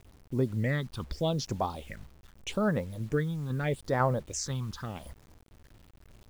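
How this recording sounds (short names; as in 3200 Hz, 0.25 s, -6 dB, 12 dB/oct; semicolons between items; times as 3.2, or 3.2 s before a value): tremolo saw down 2 Hz, depth 35%; phasing stages 6, 0.81 Hz, lowest notch 520–3100 Hz; a quantiser's noise floor 10-bit, dither none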